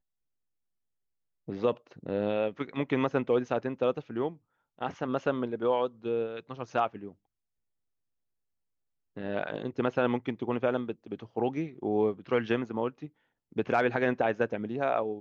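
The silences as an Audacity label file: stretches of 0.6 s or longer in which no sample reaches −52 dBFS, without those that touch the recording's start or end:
7.130000	9.170000	silence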